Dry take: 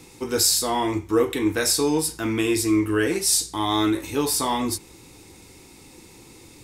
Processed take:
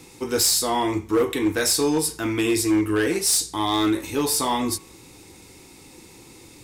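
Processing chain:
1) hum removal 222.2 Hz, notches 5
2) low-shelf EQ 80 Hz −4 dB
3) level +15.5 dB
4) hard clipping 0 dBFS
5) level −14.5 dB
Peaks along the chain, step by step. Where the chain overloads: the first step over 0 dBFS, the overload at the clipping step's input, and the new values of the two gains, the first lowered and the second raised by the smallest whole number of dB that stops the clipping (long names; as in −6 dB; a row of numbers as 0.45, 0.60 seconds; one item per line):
−5.5, −5.5, +10.0, 0.0, −14.5 dBFS
step 3, 10.0 dB
step 3 +5.5 dB, step 5 −4.5 dB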